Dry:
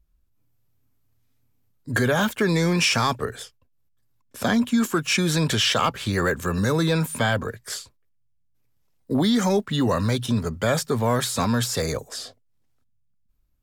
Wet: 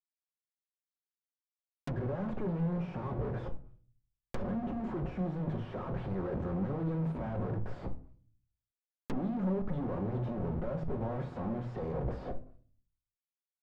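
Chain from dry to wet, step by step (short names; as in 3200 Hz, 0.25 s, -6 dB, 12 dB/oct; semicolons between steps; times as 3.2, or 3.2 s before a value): reverse; compressor 12:1, threshold -28 dBFS, peak gain reduction 12.5 dB; reverse; Schmitt trigger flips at -47.5 dBFS; shoebox room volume 370 m³, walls furnished, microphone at 1 m; treble ducked by the level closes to 710 Hz, closed at -32.5 dBFS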